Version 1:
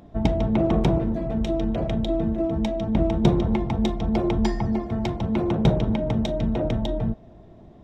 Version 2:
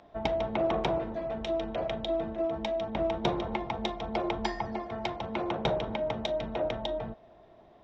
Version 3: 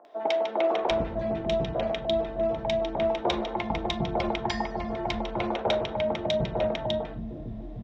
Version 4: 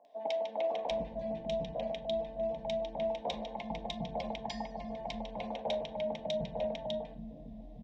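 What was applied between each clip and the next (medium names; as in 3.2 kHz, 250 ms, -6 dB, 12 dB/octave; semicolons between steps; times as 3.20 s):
three-band isolator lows -17 dB, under 480 Hz, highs -22 dB, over 5.7 kHz
three bands offset in time mids, highs, lows 50/750 ms, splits 310/1200 Hz; trim +5 dB
static phaser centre 360 Hz, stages 6; trim -7.5 dB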